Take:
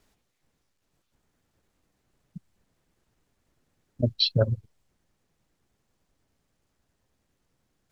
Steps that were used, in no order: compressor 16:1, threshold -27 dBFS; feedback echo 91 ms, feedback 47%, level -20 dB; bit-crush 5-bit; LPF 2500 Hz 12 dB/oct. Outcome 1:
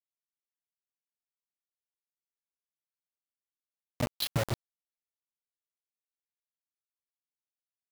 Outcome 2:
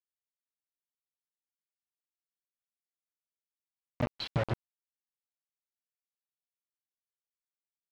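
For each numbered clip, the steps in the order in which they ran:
LPF > compressor > feedback echo > bit-crush; feedback echo > compressor > bit-crush > LPF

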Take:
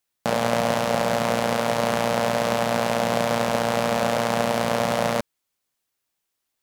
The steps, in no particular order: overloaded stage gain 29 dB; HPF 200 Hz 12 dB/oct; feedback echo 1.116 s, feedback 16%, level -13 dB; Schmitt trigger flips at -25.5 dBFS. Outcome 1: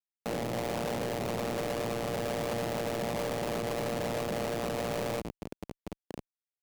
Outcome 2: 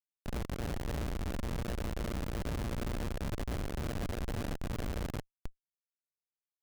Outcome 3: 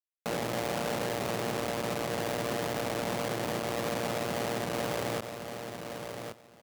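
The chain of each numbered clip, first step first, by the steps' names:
feedback echo > Schmitt trigger > HPF > overloaded stage; feedback echo > overloaded stage > HPF > Schmitt trigger; Schmitt trigger > feedback echo > overloaded stage > HPF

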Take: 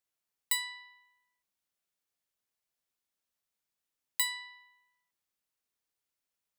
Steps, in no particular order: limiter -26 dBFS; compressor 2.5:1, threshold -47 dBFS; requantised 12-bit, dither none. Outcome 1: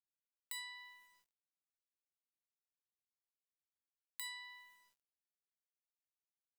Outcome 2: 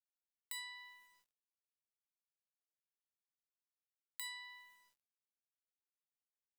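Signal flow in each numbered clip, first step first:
limiter > requantised > compressor; requantised > limiter > compressor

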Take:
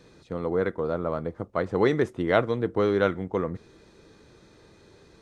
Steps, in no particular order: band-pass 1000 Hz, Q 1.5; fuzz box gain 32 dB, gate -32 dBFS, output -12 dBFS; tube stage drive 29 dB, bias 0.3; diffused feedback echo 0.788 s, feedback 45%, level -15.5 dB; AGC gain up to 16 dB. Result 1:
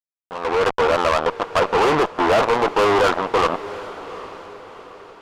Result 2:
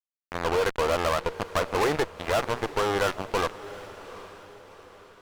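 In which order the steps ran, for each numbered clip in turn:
fuzz box > band-pass > tube stage > AGC > diffused feedback echo; AGC > band-pass > tube stage > fuzz box > diffused feedback echo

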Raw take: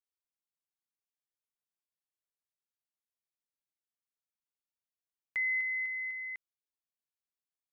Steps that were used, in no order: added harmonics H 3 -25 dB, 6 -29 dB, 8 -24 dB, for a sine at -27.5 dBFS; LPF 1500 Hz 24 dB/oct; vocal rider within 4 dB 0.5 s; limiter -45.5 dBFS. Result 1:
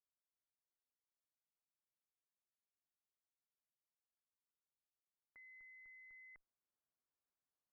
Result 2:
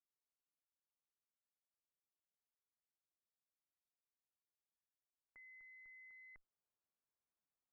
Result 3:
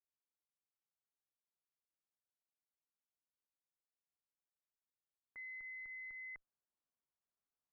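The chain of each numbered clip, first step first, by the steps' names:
vocal rider > added harmonics > limiter > LPF; added harmonics > vocal rider > limiter > LPF; vocal rider > added harmonics > LPF > limiter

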